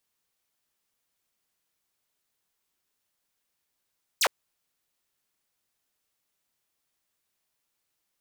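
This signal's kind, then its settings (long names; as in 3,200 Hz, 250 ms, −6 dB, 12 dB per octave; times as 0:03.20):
single falling chirp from 8,700 Hz, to 410 Hz, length 0.06 s saw, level −17 dB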